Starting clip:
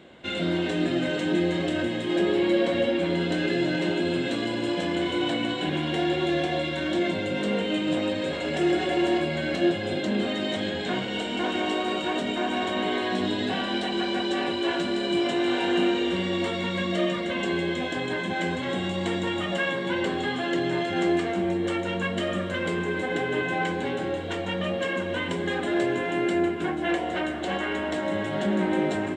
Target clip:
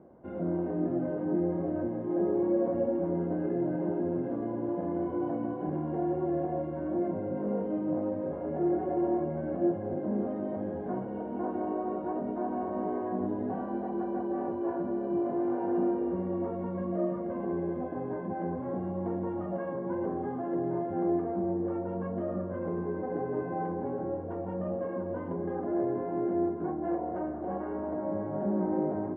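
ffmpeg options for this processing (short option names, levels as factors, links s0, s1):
-af "areverse,acompressor=mode=upward:threshold=0.01:ratio=2.5,areverse,lowpass=f=1000:w=0.5412,lowpass=f=1000:w=1.3066,volume=0.596"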